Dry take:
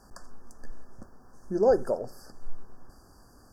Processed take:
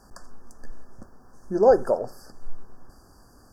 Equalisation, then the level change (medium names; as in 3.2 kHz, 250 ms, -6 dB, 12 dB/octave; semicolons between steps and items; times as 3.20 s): dynamic bell 950 Hz, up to +6 dB, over -41 dBFS, Q 0.73; +2.0 dB